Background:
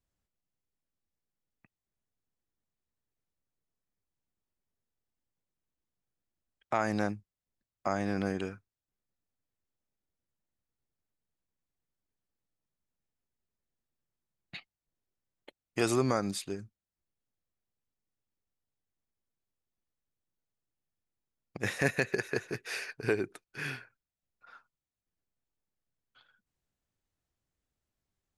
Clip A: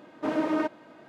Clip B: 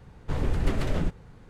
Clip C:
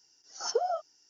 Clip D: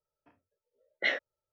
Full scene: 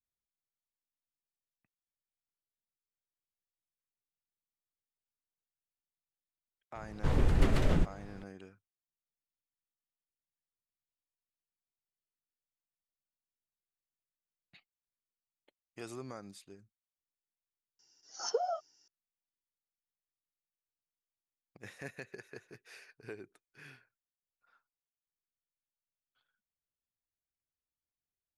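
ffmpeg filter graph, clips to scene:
-filter_complex "[0:a]volume=-16.5dB[a];[2:a]atrim=end=1.49,asetpts=PTS-STARTPTS,volume=-1dB,afade=t=in:d=0.004:c=hsin,afade=t=out:st=1.486:d=0.004:c=hsin,adelay=6750[b];[3:a]atrim=end=1.09,asetpts=PTS-STARTPTS,volume=-4dB,afade=t=in:d=0.004:c=hsin,afade=t=out:st=1.086:d=0.004:c=hsin,adelay=17790[c];[a][b][c]amix=inputs=3:normalize=0"

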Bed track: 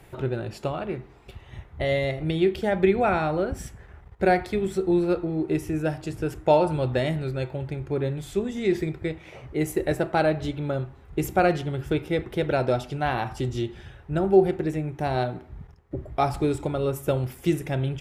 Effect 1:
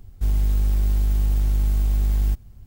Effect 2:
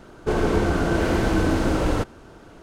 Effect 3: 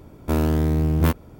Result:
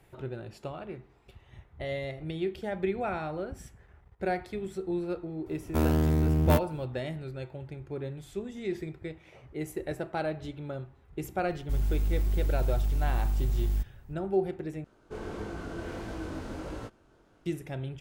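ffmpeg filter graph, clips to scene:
-filter_complex "[0:a]volume=-10dB[a];[2:a]flanger=delay=18:depth=5.7:speed=1.5[b];[a]asplit=2[c][d];[c]atrim=end=14.844[e];[b]atrim=end=2.62,asetpts=PTS-STARTPTS,volume=-14dB[f];[d]atrim=start=17.456[g];[3:a]atrim=end=1.39,asetpts=PTS-STARTPTS,volume=-4.5dB,afade=t=in:d=0.004:c=hsin,afade=t=out:st=1.386:d=0.004:c=hsin,adelay=5460[h];[1:a]atrim=end=2.66,asetpts=PTS-STARTPTS,volume=-7.5dB,afade=t=in:d=0.004:c=hsin,afade=t=out:st=2.656:d=0.004:c=hsin,adelay=11480[i];[e][f]acrossfade=d=0.004:c1=hsin:c2=hsin[j];[j][g]acrossfade=d=0.004:c1=hsin:c2=hsin[k];[k][h][i]amix=inputs=3:normalize=0"

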